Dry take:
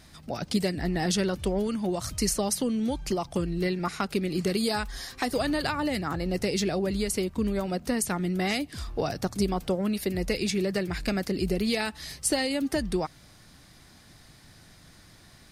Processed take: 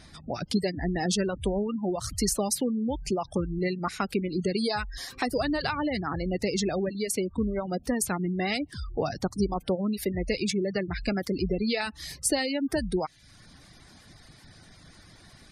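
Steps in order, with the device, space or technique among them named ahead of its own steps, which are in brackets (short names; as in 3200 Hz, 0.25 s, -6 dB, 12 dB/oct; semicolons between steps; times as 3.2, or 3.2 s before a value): spectral gate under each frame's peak -25 dB strong; 6.89–7.3 HPF 240 Hz -> 110 Hz 12 dB/oct; parallel compression (in parallel at -8.5 dB: compressor, threshold -43 dBFS, peak gain reduction 20 dB); on the sum: reverb removal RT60 0.54 s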